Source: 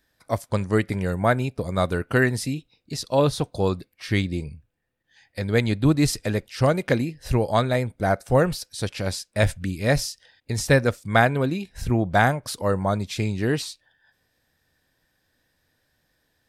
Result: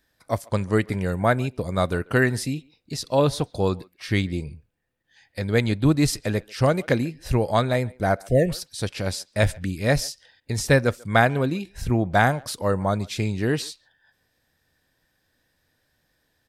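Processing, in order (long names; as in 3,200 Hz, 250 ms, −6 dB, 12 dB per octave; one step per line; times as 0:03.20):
far-end echo of a speakerphone 140 ms, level −24 dB
time-frequency box erased 0:08.28–0:08.49, 720–1,700 Hz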